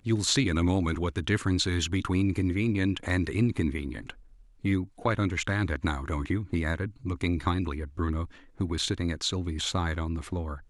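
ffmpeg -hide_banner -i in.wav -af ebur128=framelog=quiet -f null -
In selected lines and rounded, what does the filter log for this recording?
Integrated loudness:
  I:         -28.9 LUFS
  Threshold: -39.1 LUFS
Loudness range:
  LRA:         3.6 LU
  Threshold: -49.5 LUFS
  LRA low:   -30.9 LUFS
  LRA high:  -27.3 LUFS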